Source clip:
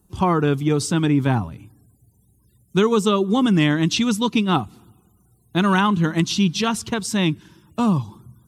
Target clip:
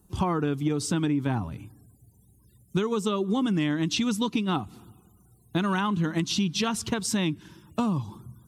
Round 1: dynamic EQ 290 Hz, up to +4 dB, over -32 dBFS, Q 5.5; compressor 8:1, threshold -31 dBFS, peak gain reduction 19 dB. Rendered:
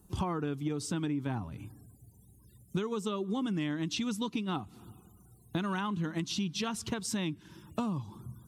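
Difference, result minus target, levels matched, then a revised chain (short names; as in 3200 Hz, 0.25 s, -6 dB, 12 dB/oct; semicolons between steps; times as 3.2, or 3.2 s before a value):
compressor: peak gain reduction +7.5 dB
dynamic EQ 290 Hz, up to +4 dB, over -32 dBFS, Q 5.5; compressor 8:1, threshold -22.5 dBFS, peak gain reduction 11.5 dB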